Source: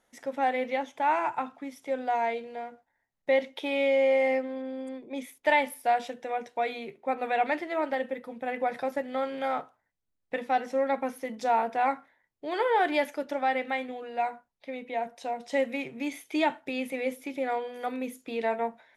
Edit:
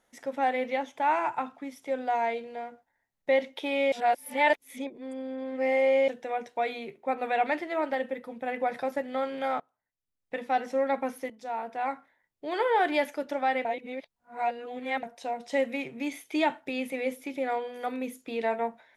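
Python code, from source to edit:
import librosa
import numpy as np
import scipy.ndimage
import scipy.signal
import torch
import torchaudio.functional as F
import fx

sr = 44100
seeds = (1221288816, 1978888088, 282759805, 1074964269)

y = fx.edit(x, sr, fx.reverse_span(start_s=3.92, length_s=2.16),
    fx.fade_in_from(start_s=9.6, length_s=1.01, floor_db=-23.0),
    fx.fade_in_from(start_s=11.3, length_s=1.19, floor_db=-14.0),
    fx.reverse_span(start_s=13.65, length_s=1.38), tone=tone)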